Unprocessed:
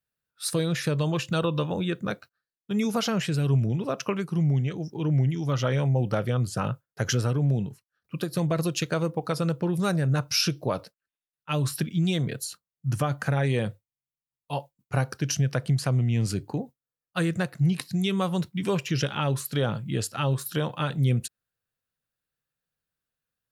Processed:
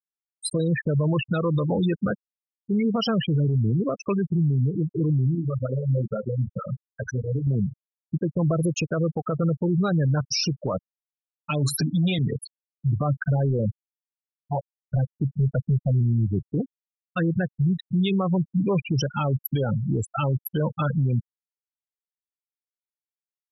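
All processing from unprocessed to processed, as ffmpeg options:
ffmpeg -i in.wav -filter_complex "[0:a]asettb=1/sr,asplit=3[link_01][link_02][link_03];[link_01]atrim=end=5.354[link_04];[link_02]atrim=start=5.35:end=7.47,asetpts=PTS-STARTPTS,afade=type=in:duration=0.004:curve=qsin,afade=type=out:start_time=2.116:duration=0.004:curve=qsin,highpass=frequency=190:poles=1,acompressor=threshold=-30dB:ratio=6:attack=3.2:release=140:knee=1:detection=peak,asplit=2[link_05][link_06];[link_06]adelay=23,volume=-6dB[link_07];[link_05][link_07]amix=inputs=2:normalize=0,atrim=end_sample=93492[link_08];[link_03]atrim=start=7.466[link_09];[link_04][link_08]acrossfade=duration=0.004:curve1=hsin:curve2=qsin[link_10];[link_10][link_09]acrossfade=duration=0.004:curve1=qsin:curve2=hsin,asettb=1/sr,asplit=3[link_11][link_12][link_13];[link_11]atrim=end=11.504[link_14];[link_12]atrim=start=11.5:end=12.19,asetpts=PTS-STARTPTS,afade=type=in:duration=0.004:curve=qsin,afade=type=out:start_time=0.686:duration=0.004:curve=qsin,aeval=exprs='0.2*sin(PI/2*1.41*val(0)/0.2)':channel_layout=same,highpass=150,aecho=1:1:7.1:0.63,atrim=end_sample=30429[link_15];[link_13]atrim=start=12.186[link_16];[link_14][link_15]acrossfade=duration=0.004:curve1=hsin:curve2=qsin[link_17];[link_17][link_16]acrossfade=duration=0.004:curve1=qsin:curve2=hsin,asettb=1/sr,asplit=3[link_18][link_19][link_20];[link_18]atrim=end=13.044[link_21];[link_19]atrim=start=13.04:end=16.51,asetpts=PTS-STARTPTS,afade=type=in:duration=0.004:curve=qsin,afade=type=out:start_time=3.466:duration=0.004:curve=qsin,lowpass=frequency=1600:poles=1,asoftclip=type=hard:threshold=-21dB[link_22];[link_20]atrim=start=16.506[link_23];[link_21][link_22]acrossfade=duration=0.004:curve1=hsin:curve2=qsin[link_24];[link_24][link_23]acrossfade=duration=0.004:curve1=qsin:curve2=hsin,afftfilt=real='re*gte(hypot(re,im),0.0891)':imag='im*gte(hypot(re,im),0.0891)':win_size=1024:overlap=0.75,acompressor=threshold=-25dB:ratio=6,alimiter=level_in=1.5dB:limit=-24dB:level=0:latency=1:release=21,volume=-1.5dB,volume=9dB" out.wav

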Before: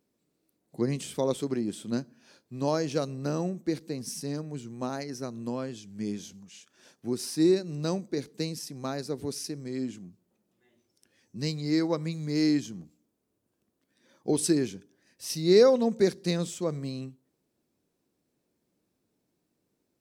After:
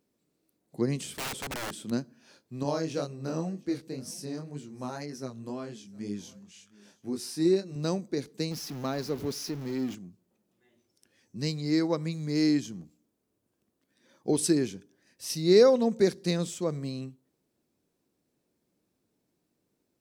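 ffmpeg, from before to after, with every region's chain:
ffmpeg -i in.wav -filter_complex "[0:a]asettb=1/sr,asplit=3[link_01][link_02][link_03];[link_01]atrim=end=1.134[link_04];[link_02]atrim=start=1.13:end=1.91,asetpts=PTS-STARTPTS,afade=type=in:duration=0.004:curve=qsin,afade=type=out:start_time=0.776:duration=0.004:curve=qsin,highpass=48,aeval=exprs='(mod(29.9*val(0)+1,2)-1)/29.9':channel_layout=same[link_05];[link_03]atrim=start=1.906[link_06];[link_04][link_05]acrossfade=duration=0.004:curve1=hsin:curve2=qsin[link_07];[link_07][link_06]acrossfade=duration=0.004:curve1=qsin:curve2=hsin,asettb=1/sr,asplit=3[link_08][link_09][link_10];[link_08]atrim=end=2.634[link_11];[link_09]atrim=start=2.63:end=7.76,asetpts=PTS-STARTPTS,afade=type=in:duration=0.004:curve=qsin,afade=type=out:start_time=5.126:duration=0.004:curve=qsin,aecho=1:1:712:0.0668,atrim=end_sample=226233,flanger=delay=20:depth=4.9:speed=2[link_12];[link_10]atrim=start=7.756[link_13];[link_11][link_12]acrossfade=duration=0.004:curve1=hsin:curve2=qsin[link_14];[link_14][link_13]acrossfade=duration=0.004:curve1=qsin:curve2=hsin,asettb=1/sr,asplit=3[link_15][link_16][link_17];[link_15]atrim=end=8.514[link_18];[link_16]atrim=start=8.51:end=9.95,asetpts=PTS-STARTPTS,afade=type=in:duration=0.004:curve=qsin,afade=type=out:start_time=1.436:duration=0.004:curve=qsin,aeval=exprs='val(0)+0.5*0.0106*sgn(val(0))':channel_layout=same,equalizer=frequency=8600:width=2.3:gain=-12.5[link_19];[link_17]atrim=start=9.946[link_20];[link_18][link_19]acrossfade=duration=0.004:curve1=hsin:curve2=qsin[link_21];[link_21][link_20]acrossfade=duration=0.004:curve1=qsin:curve2=hsin" out.wav

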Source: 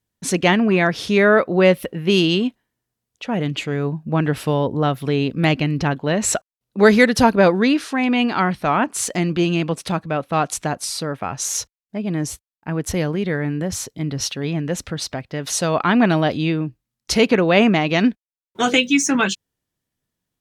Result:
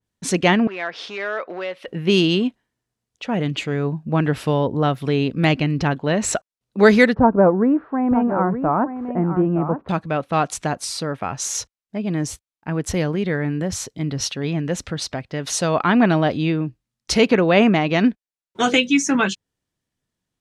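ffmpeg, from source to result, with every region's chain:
ffmpeg -i in.wav -filter_complex "[0:a]asettb=1/sr,asplit=3[link_01][link_02][link_03];[link_01]atrim=end=0.674[link_04];[link_02]atrim=start=0.67:end=1.88,asetpts=PTS-STARTPTS,afade=type=in:duration=0.004:curve=qsin,afade=type=out:start_time=1.206:duration=0.004:curve=qsin,acompressor=threshold=-18dB:ratio=8:attack=3.2:release=140:knee=1:detection=peak,volume=17dB,asoftclip=hard,volume=-17dB,highpass=580,lowpass=4100[link_05];[link_03]atrim=start=1.876[link_06];[link_04][link_05]acrossfade=duration=0.004:curve1=hsin:curve2=qsin[link_07];[link_07][link_06]acrossfade=duration=0.004:curve1=qsin:curve2=hsin,asettb=1/sr,asplit=3[link_08][link_09][link_10];[link_08]atrim=end=7.144[link_11];[link_09]atrim=start=7.14:end=9.89,asetpts=PTS-STARTPTS,afade=type=in:duration=0.004:curve=qsin,afade=type=out:start_time=2.746:duration=0.004:curve=qsin,lowpass=frequency=1200:width=0.5412,lowpass=frequency=1200:width=1.3066,aecho=1:1:920:0.316,atrim=end_sample=121275[link_12];[link_10]atrim=start=9.886[link_13];[link_11][link_12]acrossfade=duration=0.004:curve1=hsin:curve2=qsin[link_14];[link_14][link_13]acrossfade=duration=0.004:curve1=qsin:curve2=hsin,lowpass=9600,adynamicequalizer=threshold=0.0282:dfrequency=2300:dqfactor=0.7:tfrequency=2300:tqfactor=0.7:attack=5:release=100:ratio=0.375:range=2.5:mode=cutabove:tftype=highshelf" out.wav

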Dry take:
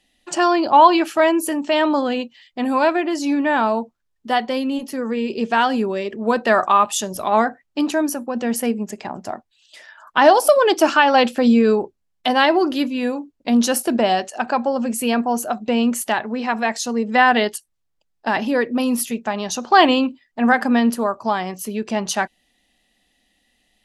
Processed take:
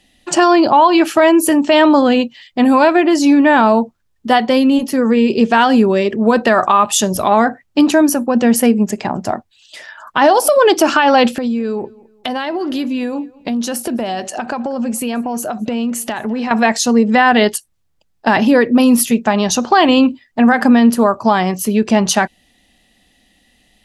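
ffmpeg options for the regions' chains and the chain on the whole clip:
ffmpeg -i in.wav -filter_complex "[0:a]asettb=1/sr,asplit=3[link_01][link_02][link_03];[link_01]atrim=end=11.354[link_04];[link_02]atrim=start=11.35:end=16.51,asetpts=PTS-STARTPTS,afade=type=in:duration=0.004:curve=qsin,afade=type=out:start_time=5.156:duration=0.004:curve=qsin,acompressor=threshold=-27dB:ratio=8:attack=3.2:release=140:knee=1:detection=peak,asplit=2[link_05][link_06];[link_06]adelay=212,lowpass=frequency=4000:poles=1,volume=-23dB,asplit=2[link_07][link_08];[link_08]adelay=212,lowpass=frequency=4000:poles=1,volume=0.37[link_09];[link_05][link_07][link_09]amix=inputs=3:normalize=0,atrim=end_sample=227556[link_10];[link_03]atrim=start=16.506[link_11];[link_04][link_10]acrossfade=duration=0.004:curve1=hsin:curve2=qsin[link_12];[link_12][link_11]acrossfade=duration=0.004:curve1=qsin:curve2=hsin,equalizer=frequency=97:width=0.52:gain=6.5,acompressor=threshold=-14dB:ratio=6,alimiter=level_in=9.5dB:limit=-1dB:release=50:level=0:latency=1,volume=-1dB" out.wav

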